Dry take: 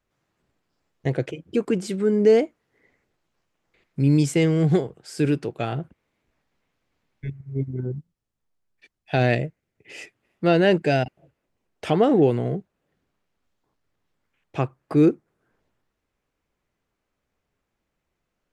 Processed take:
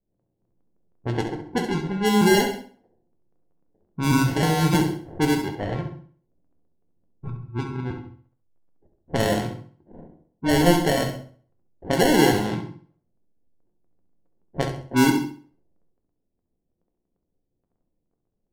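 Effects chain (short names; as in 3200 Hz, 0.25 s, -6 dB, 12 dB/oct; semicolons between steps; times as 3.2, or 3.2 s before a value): trilling pitch shifter -2.5 st, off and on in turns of 0.316 s; sample-and-hold 36×; crackle 11/s -40 dBFS; low-pass opened by the level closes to 510 Hz, open at -17 dBFS; flutter echo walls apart 11.5 m, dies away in 0.45 s; on a send at -6 dB: reverb, pre-delay 4 ms; on the sum: mismatched tape noise reduction decoder only; gain -1.5 dB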